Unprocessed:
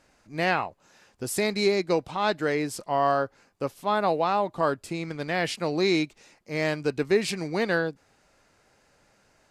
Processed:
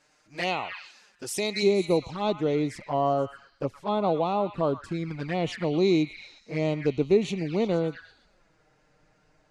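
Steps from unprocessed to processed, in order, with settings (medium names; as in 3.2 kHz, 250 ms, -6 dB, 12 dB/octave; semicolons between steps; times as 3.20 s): tilt EQ +2 dB/octave, from 1.62 s -1.5 dB/octave; repeats whose band climbs or falls 119 ms, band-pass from 1.6 kHz, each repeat 0.7 oct, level -6 dB; touch-sensitive flanger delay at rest 6.9 ms, full sweep at -22.5 dBFS; low-pass 7.9 kHz 12 dB/octave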